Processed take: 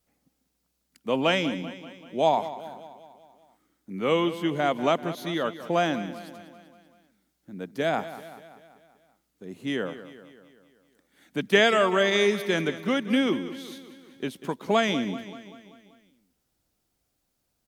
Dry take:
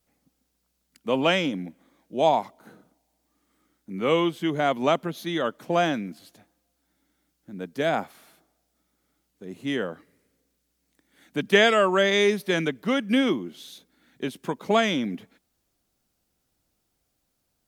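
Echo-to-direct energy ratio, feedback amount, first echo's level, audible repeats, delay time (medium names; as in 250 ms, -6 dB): -12.5 dB, 56%, -14.0 dB, 5, 193 ms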